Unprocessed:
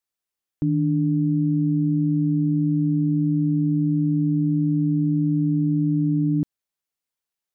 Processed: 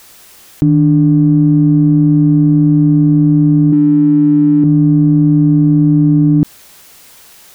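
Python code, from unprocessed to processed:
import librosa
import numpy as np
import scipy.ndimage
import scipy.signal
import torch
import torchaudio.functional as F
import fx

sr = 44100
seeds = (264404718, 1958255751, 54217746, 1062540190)

p1 = fx.graphic_eq_31(x, sr, hz=(125, 200, 315), db=(-8, 7, 11), at=(3.72, 4.64))
p2 = 10.0 ** (-25.5 / 20.0) * np.tanh(p1 / 10.0 ** (-25.5 / 20.0))
p3 = p1 + (p2 * 10.0 ** (-11.5 / 20.0))
p4 = fx.env_flatten(p3, sr, amount_pct=100)
y = p4 * 10.0 ** (5.0 / 20.0)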